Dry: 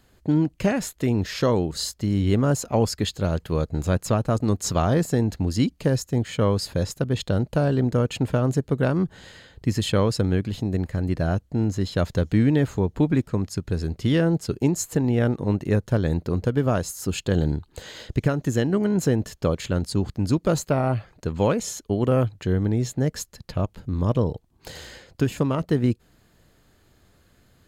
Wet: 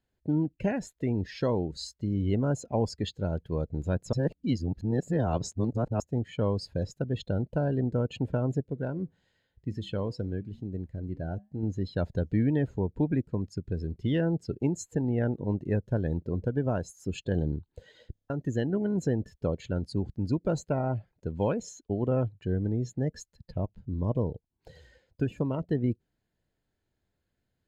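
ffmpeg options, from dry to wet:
-filter_complex "[0:a]asettb=1/sr,asplit=3[a][b][c];[a]atrim=end=8.634[d];[b]atrim=start=8.63:end=11.63,asetpts=PTS-STARTPTS,afade=t=in:d=0.004:c=qsin,afade=t=out:st=2.996:d=0.004:c=qsin,flanger=delay=6.2:depth=3:regen=-89:speed=1:shape=triangular[e];[c]atrim=start=11.626[f];[d][e]acrossfade=d=0.004:c1=hsin:c2=qsin[g];[g][f]acrossfade=d=0.004:c1=qsin:c2=hsin,asplit=9[h][i][j][k][l][m][n][o][p];[h]atrim=end=4.132[q];[i]atrim=start=4.128:end=6.002,asetpts=PTS-STARTPTS,areverse[r];[j]atrim=start=5.998:end=18.152[s];[k]atrim=start=18.118:end=18.152[t];[l]atrim=start=18.118:end=18.152[u];[m]atrim=start=18.118:end=18.152[v];[n]atrim=start=18.118:end=18.152[w];[o]atrim=start=18.118:end=18.152[x];[p]atrim=start=18.298[y];[q][r]acrossfade=d=0.004:c1=hsin:c2=hsin[z];[z][s]acrossfade=d=0.004:c1=hsin:c2=hsin[aa];[aa][t]acrossfade=d=0.004:c1=hsin:c2=hsin[ab];[ab][u]acrossfade=d=0.004:c1=hsin:c2=hsin[ac];[ac][v]acrossfade=d=0.004:c1=hsin:c2=hsin[ad];[ad][w]acrossfade=d=0.004:c1=hsin:c2=hsin[ae];[ae][x]acrossfade=d=0.004:c1=hsin:c2=hsin[af];[af][y]acrossfade=d=0.004:c1=hsin:c2=hsin,bandreject=f=1.2k:w=5.5,afftdn=nr=15:nf=-34,highshelf=f=6.8k:g=-9.5,volume=-6.5dB"

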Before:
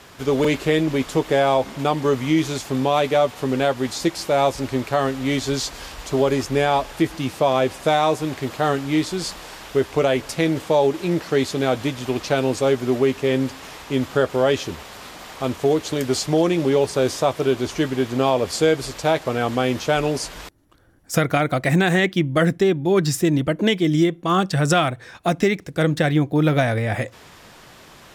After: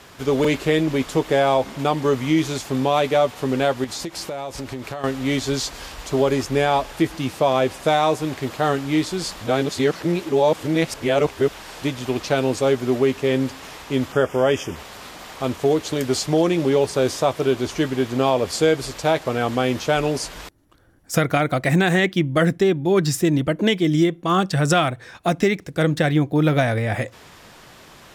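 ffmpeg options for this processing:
-filter_complex "[0:a]asettb=1/sr,asplit=3[a][b][c];[a]atrim=end=3.844[d];[b]atrim=start=3.84:end=5.04,asetpts=PTS-STARTPTS,afade=t=in:d=0.004:c=qsin,afade=t=out:st=1.196:d=0.004:c=qsin,acompressor=threshold=-25dB:ratio=12:attack=3.2:release=140:knee=1:detection=peak[e];[c]atrim=start=5.036[f];[d][e]acrossfade=d=0.004:c1=hsin:c2=qsin[g];[g][f]acrossfade=d=0.004:c1=qsin:c2=hsin,asettb=1/sr,asplit=3[h][i][j];[h]atrim=end=14.124[k];[i]atrim=start=14.12:end=14.76,asetpts=PTS-STARTPTS,afade=t=in:d=0.004:c=qsin,afade=t=out:st=0.636:d=0.004:c=qsin,asuperstop=centerf=4100:order=4:qfactor=2.6[l];[j]atrim=start=14.756[m];[k][l]acrossfade=d=0.004:c1=hsin:c2=qsin[n];[n][m]acrossfade=d=0.004:c1=qsin:c2=hsin,asplit=3[o][p][q];[o]atrim=end=9.412[r];[p]atrim=start=9.408:end=11.822,asetpts=PTS-STARTPTS,areverse[s];[q]atrim=start=11.818[t];[r][s]acrossfade=d=0.004:c1=hsin:c2=hsin[u];[u][t]acrossfade=d=0.004:c1=hsin:c2=hsin"

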